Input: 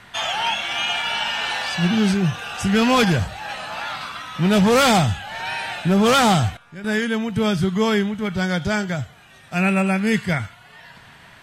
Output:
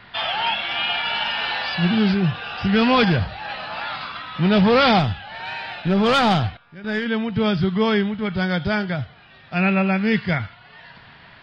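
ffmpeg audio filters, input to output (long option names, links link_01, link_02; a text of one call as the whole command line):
ffmpeg -i in.wav -filter_complex "[0:a]aresample=11025,aresample=44100,asettb=1/sr,asplit=3[link_01][link_02][link_03];[link_01]atrim=end=4.994[link_04];[link_02]atrim=start=4.99:end=7.06,asetpts=PTS-STARTPTS,afade=type=in:duration=0.004:curve=qsin,afade=type=out:start_time=2.066:duration=0.004:curve=qsin,aeval=exprs='0.376*(cos(1*acos(clip(val(0)/0.376,-1,1)))-cos(1*PI/2))+0.0422*(cos(3*acos(clip(val(0)/0.376,-1,1)))-cos(3*PI/2))+0.0119*(cos(4*acos(clip(val(0)/0.376,-1,1)))-cos(4*PI/2))+0.00299*(cos(6*acos(clip(val(0)/0.376,-1,1)))-cos(6*PI/2))':channel_layout=same[link_05];[link_03]atrim=start=7.056[link_06];[link_04][link_05]acrossfade=duration=0.004:curve1=hsin:curve2=qsin[link_07];[link_07][link_06]acrossfade=duration=0.004:curve1=qsin:curve2=hsin" out.wav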